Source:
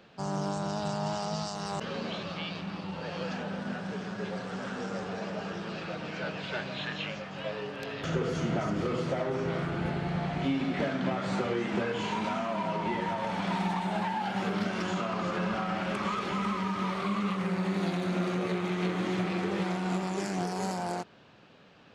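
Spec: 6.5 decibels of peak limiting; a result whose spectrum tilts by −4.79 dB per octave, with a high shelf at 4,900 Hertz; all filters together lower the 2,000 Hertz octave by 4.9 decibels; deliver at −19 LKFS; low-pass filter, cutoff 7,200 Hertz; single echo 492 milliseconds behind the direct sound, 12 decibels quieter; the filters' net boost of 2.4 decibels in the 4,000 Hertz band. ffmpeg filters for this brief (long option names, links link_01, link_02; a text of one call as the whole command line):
ffmpeg -i in.wav -af "lowpass=7200,equalizer=frequency=2000:width_type=o:gain=-8.5,equalizer=frequency=4000:width_type=o:gain=5,highshelf=frequency=4900:gain=3.5,alimiter=level_in=1dB:limit=-24dB:level=0:latency=1,volume=-1dB,aecho=1:1:492:0.251,volume=15.5dB" out.wav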